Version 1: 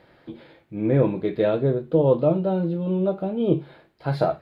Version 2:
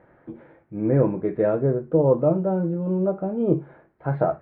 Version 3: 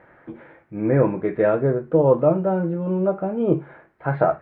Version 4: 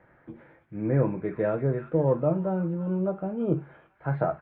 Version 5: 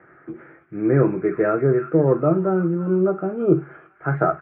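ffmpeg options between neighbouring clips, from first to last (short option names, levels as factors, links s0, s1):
-af "lowpass=f=1800:w=0.5412,lowpass=f=1800:w=1.3066"
-af "equalizer=f=2200:w=0.44:g=9.5"
-filter_complex "[0:a]acrossover=split=210|1300[s0][s1][s2];[s0]acontrast=68[s3];[s2]asplit=2[s4][s5];[s5]adelay=337,lowpass=f=2400:p=1,volume=0.631,asplit=2[s6][s7];[s7]adelay=337,lowpass=f=2400:p=1,volume=0.39,asplit=2[s8][s9];[s9]adelay=337,lowpass=f=2400:p=1,volume=0.39,asplit=2[s10][s11];[s11]adelay=337,lowpass=f=2400:p=1,volume=0.39,asplit=2[s12][s13];[s13]adelay=337,lowpass=f=2400:p=1,volume=0.39[s14];[s4][s6][s8][s10][s12][s14]amix=inputs=6:normalize=0[s15];[s3][s1][s15]amix=inputs=3:normalize=0,volume=0.376"
-af "highpass=110,equalizer=f=110:t=q:w=4:g=-8,equalizer=f=220:t=q:w=4:g=-8,equalizer=f=370:t=q:w=4:g=7,equalizer=f=540:t=q:w=4:g=-7,equalizer=f=930:t=q:w=4:g=-9,equalizer=f=1300:t=q:w=4:g=8,lowpass=f=2400:w=0.5412,lowpass=f=2400:w=1.3066,volume=2.66"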